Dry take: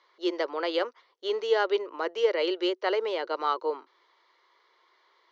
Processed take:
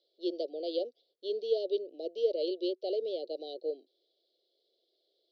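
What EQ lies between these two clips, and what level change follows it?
elliptic band-stop 610–3600 Hz, stop band 70 dB; brick-wall FIR band-stop 790–1800 Hz; steep low-pass 5200 Hz 48 dB/oct; -4.0 dB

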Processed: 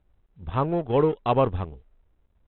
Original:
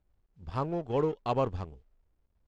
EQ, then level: brick-wall FIR low-pass 4000 Hz; +7.5 dB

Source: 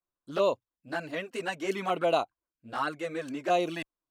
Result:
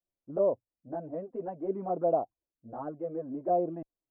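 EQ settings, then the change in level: Chebyshev low-pass 700 Hz, order 3; 0.0 dB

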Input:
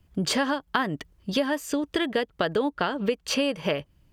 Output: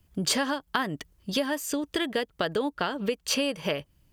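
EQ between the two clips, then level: high shelf 5100 Hz +9.5 dB; -3.0 dB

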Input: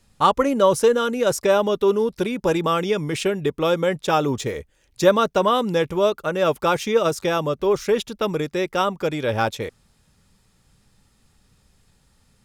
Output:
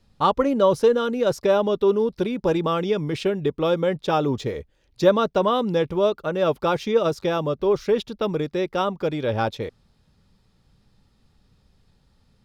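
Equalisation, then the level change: bell 2400 Hz -7 dB 2.3 oct; resonant high shelf 5800 Hz -10.5 dB, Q 1.5; 0.0 dB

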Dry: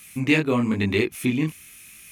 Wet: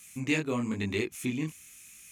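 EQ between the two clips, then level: bell 7000 Hz +11 dB 0.59 oct; -9.0 dB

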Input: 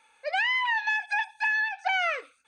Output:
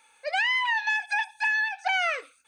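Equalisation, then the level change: high shelf 6200 Hz +11 dB; 0.0 dB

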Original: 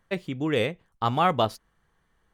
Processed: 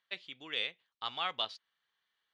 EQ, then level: band-pass 3700 Hz, Q 2.2; air absorption 85 m; +3.0 dB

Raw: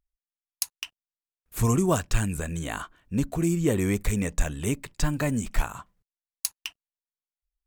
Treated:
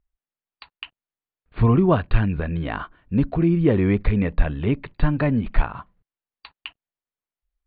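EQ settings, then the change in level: brick-wall FIR low-pass 4700 Hz; air absorption 370 m; +6.5 dB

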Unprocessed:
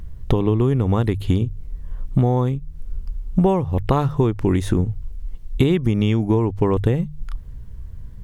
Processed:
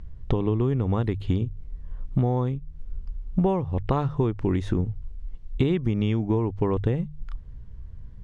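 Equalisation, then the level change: air absorption 100 m; -5.5 dB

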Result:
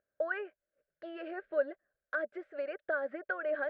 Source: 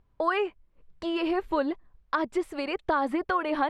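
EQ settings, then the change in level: double band-pass 960 Hz, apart 1.4 oct; air absorption 98 m; +1.0 dB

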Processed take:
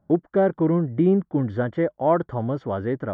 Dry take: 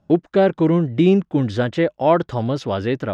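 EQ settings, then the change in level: polynomial smoothing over 41 samples; -4.0 dB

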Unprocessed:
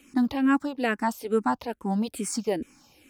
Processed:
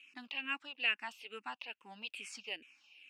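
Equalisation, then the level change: band-pass 2700 Hz, Q 8.8; +9.0 dB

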